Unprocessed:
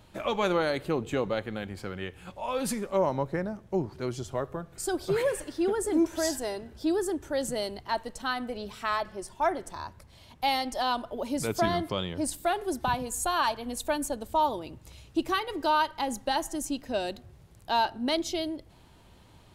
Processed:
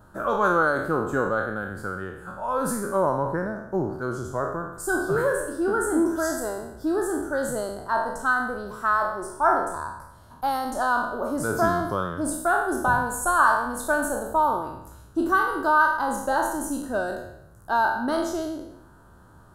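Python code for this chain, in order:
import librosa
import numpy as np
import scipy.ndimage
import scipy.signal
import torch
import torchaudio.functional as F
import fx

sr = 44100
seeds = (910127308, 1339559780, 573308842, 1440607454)

y = fx.spec_trails(x, sr, decay_s=0.79)
y = fx.curve_eq(y, sr, hz=(850.0, 1500.0, 2200.0, 10000.0), db=(0, 10, -21, -1))
y = y * 10.0 ** (1.5 / 20.0)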